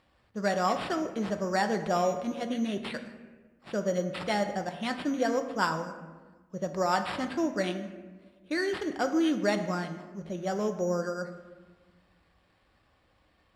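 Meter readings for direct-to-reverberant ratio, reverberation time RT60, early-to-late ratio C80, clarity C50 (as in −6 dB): 6.0 dB, 1.4 s, 11.0 dB, 9.5 dB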